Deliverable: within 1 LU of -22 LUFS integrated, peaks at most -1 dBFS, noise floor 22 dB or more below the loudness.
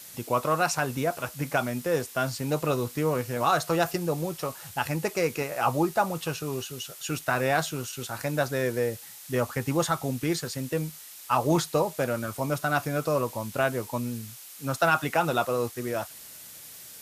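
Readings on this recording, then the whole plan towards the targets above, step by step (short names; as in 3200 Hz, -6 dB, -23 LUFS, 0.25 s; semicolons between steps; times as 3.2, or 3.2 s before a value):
noise floor -45 dBFS; noise floor target -50 dBFS; loudness -28.0 LUFS; peak -11.0 dBFS; loudness target -22.0 LUFS
-> denoiser 6 dB, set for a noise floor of -45 dBFS; gain +6 dB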